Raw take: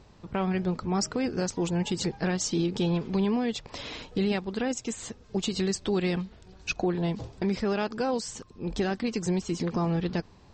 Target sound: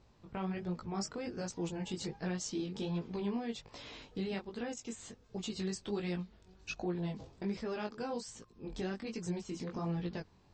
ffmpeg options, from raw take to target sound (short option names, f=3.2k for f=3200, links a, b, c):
-af "flanger=delay=17:depth=4.8:speed=1.3,volume=-7.5dB"